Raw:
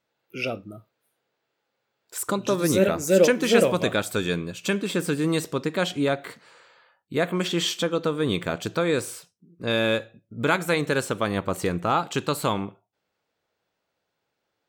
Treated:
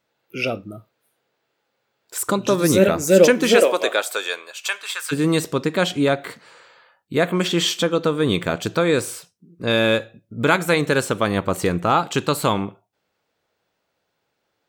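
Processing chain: 3.54–5.11 s: high-pass 300 Hz -> 1.1 kHz 24 dB/octave; trim +5 dB

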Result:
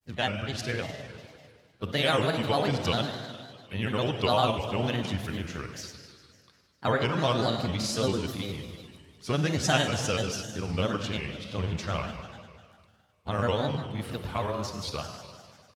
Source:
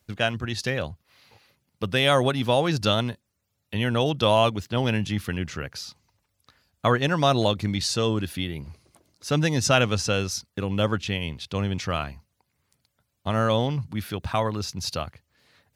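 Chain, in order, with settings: Schroeder reverb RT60 2 s, combs from 31 ms, DRR 4.5 dB; granulator, spray 17 ms, pitch spread up and down by 3 st; harmony voices +3 st -15 dB; trim -4.5 dB

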